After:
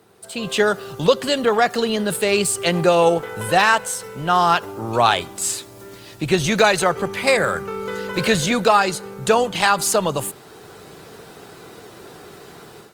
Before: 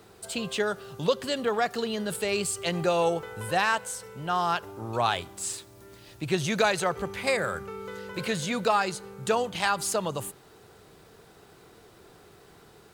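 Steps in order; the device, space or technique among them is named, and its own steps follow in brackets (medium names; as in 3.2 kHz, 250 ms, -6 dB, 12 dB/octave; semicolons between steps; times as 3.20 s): video call (high-pass 110 Hz 12 dB/octave; level rider gain up to 13 dB; Opus 24 kbps 48 kHz)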